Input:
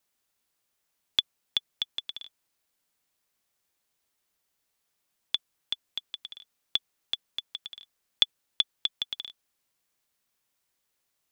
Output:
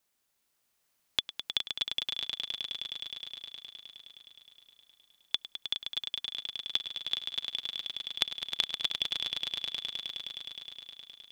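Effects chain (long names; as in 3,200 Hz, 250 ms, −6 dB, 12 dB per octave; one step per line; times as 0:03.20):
downward compressor, threshold −25 dBFS, peak gain reduction 10 dB
echo that builds up and dies away 104 ms, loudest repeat 5, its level −8 dB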